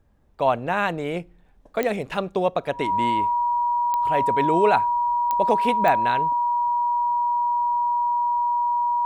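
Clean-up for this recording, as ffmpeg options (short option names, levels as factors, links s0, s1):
-af "adeclick=t=4,bandreject=f=960:w=30"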